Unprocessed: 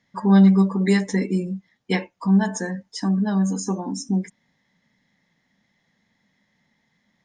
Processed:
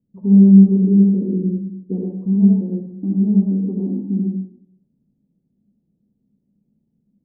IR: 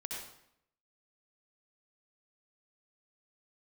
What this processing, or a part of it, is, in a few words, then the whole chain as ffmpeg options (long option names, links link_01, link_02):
next room: -filter_complex "[0:a]lowpass=frequency=380:width=0.5412,lowpass=frequency=380:width=1.3066[link_01];[1:a]atrim=start_sample=2205[link_02];[link_01][link_02]afir=irnorm=-1:irlink=0,volume=5dB"